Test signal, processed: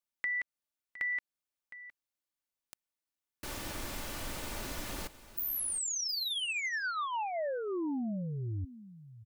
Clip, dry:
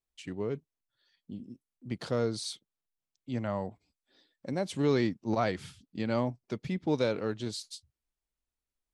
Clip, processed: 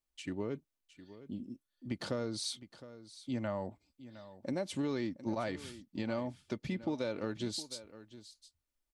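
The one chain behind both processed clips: comb 3.4 ms, depth 34%; compression, threshold -32 dBFS; on a send: delay 712 ms -15.5 dB

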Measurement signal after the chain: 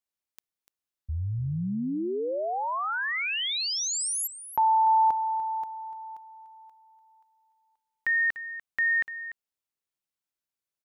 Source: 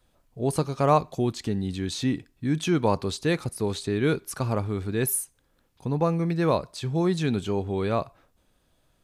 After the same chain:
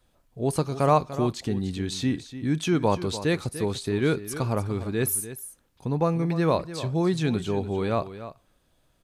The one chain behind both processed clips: delay 294 ms -13 dB

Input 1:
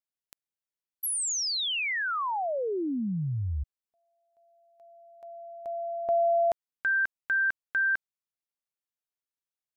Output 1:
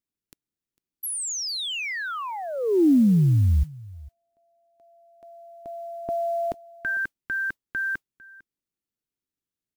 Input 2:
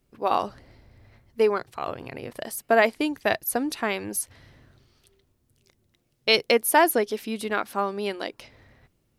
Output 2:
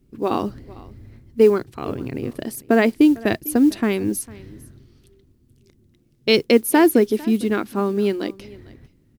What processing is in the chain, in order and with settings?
resonant low shelf 460 Hz +11 dB, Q 1.5; modulation noise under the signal 33 dB; delay 451 ms -21.5 dB

